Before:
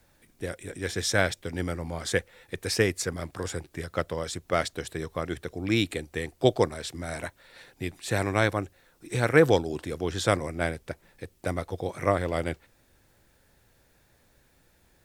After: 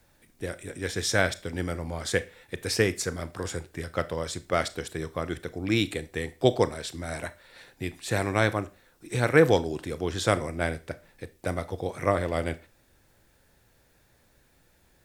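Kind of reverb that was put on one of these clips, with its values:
four-comb reverb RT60 0.32 s, combs from 25 ms, DRR 14 dB

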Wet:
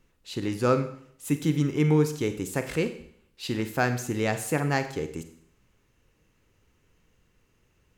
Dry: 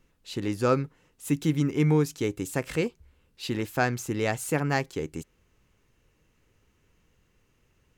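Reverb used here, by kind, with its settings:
four-comb reverb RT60 0.63 s, combs from 33 ms, DRR 9 dB

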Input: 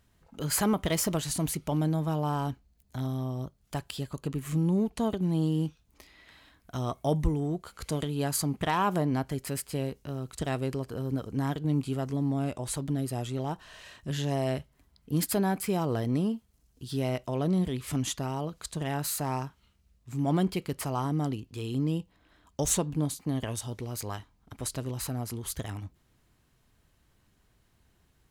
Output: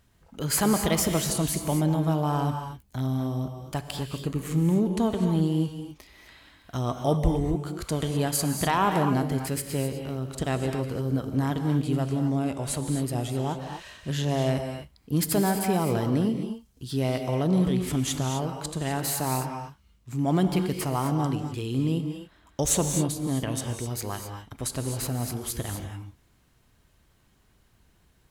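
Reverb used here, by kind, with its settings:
reverb whose tail is shaped and stops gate 280 ms rising, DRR 5 dB
level +3 dB

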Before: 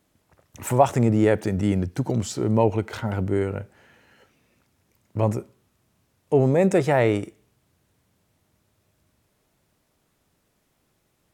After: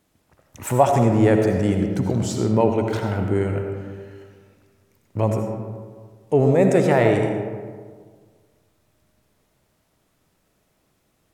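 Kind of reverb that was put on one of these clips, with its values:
comb and all-pass reverb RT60 1.7 s, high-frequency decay 0.45×, pre-delay 40 ms, DRR 3.5 dB
level +1 dB

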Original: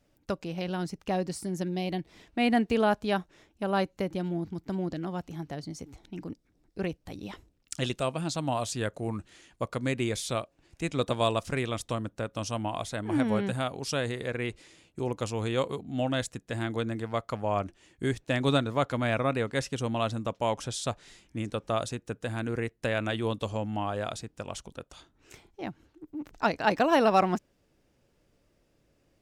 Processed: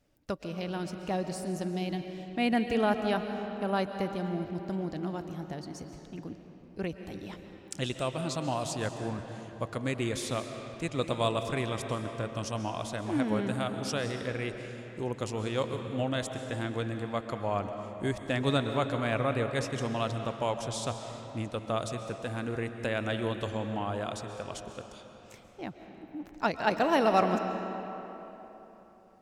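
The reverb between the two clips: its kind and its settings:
comb and all-pass reverb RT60 3.6 s, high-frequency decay 0.65×, pre-delay 95 ms, DRR 6.5 dB
level −2.5 dB

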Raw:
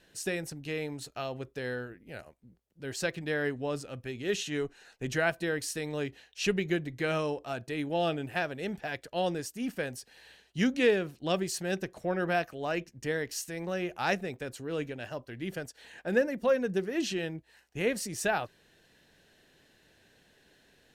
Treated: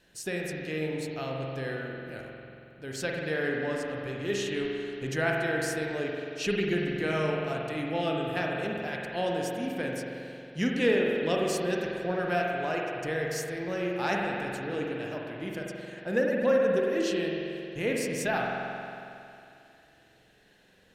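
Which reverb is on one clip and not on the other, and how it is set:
spring reverb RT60 2.7 s, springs 45 ms, chirp 50 ms, DRR −1.5 dB
level −1.5 dB

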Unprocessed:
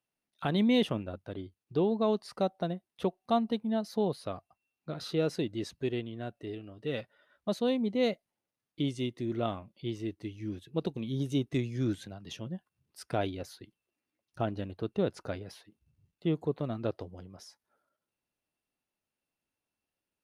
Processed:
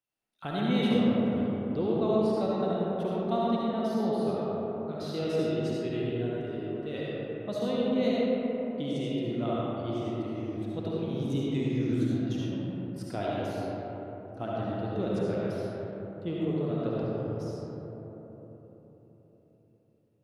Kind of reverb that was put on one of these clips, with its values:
comb and all-pass reverb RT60 4.3 s, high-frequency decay 0.3×, pre-delay 30 ms, DRR −7 dB
level −5.5 dB

